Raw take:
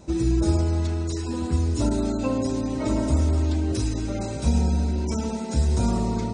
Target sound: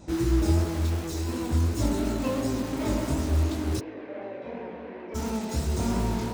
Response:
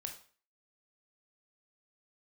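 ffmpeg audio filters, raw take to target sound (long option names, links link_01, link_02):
-filter_complex "[0:a]asplit=2[link_01][link_02];[link_02]aeval=exprs='(mod(17.8*val(0)+1,2)-1)/17.8':channel_layout=same,volume=-9dB[link_03];[link_01][link_03]amix=inputs=2:normalize=0,flanger=delay=18:depth=7.1:speed=2.8,asplit=3[link_04][link_05][link_06];[link_04]afade=type=out:start_time=3.79:duration=0.02[link_07];[link_05]highpass=450,equalizer=frequency=490:width_type=q:width=4:gain=6,equalizer=frequency=850:width_type=q:width=4:gain=-6,equalizer=frequency=1300:width_type=q:width=4:gain=-10,lowpass=frequency=2200:width=0.5412,lowpass=frequency=2200:width=1.3066,afade=type=in:start_time=3.79:duration=0.02,afade=type=out:start_time=5.14:duration=0.02[link_08];[link_06]afade=type=in:start_time=5.14:duration=0.02[link_09];[link_07][link_08][link_09]amix=inputs=3:normalize=0"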